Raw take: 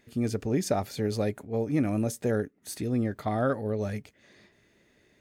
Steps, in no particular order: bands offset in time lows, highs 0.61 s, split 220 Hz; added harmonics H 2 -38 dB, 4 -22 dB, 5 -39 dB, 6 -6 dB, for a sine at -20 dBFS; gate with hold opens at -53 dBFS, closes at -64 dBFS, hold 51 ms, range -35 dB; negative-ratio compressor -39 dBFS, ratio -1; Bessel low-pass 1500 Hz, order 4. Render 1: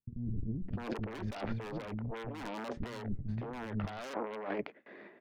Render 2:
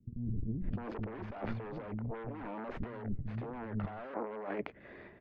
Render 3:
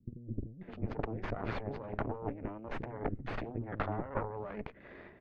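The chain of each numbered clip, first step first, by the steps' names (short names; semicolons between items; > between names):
Bessel low-pass > gate with hold > added harmonics > bands offset in time > negative-ratio compressor; gate with hold > added harmonics > bands offset in time > negative-ratio compressor > Bessel low-pass; gate with hold > negative-ratio compressor > bands offset in time > added harmonics > Bessel low-pass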